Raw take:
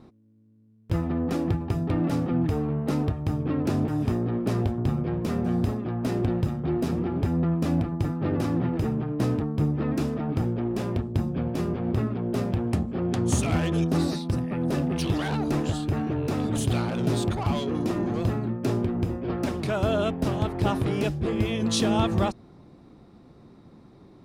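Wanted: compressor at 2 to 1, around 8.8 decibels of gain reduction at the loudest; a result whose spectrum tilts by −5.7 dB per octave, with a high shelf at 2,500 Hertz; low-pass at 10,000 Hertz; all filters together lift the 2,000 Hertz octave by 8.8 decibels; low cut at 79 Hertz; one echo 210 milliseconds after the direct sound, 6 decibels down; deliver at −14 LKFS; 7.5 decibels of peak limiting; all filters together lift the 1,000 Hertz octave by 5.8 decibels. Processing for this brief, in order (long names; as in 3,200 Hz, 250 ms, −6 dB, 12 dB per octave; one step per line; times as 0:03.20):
high-pass filter 79 Hz
low-pass filter 10,000 Hz
parametric band 1,000 Hz +5 dB
parametric band 2,000 Hz +7 dB
high-shelf EQ 2,500 Hz +6 dB
downward compressor 2 to 1, threshold −34 dBFS
brickwall limiter −24 dBFS
single-tap delay 210 ms −6 dB
level +19 dB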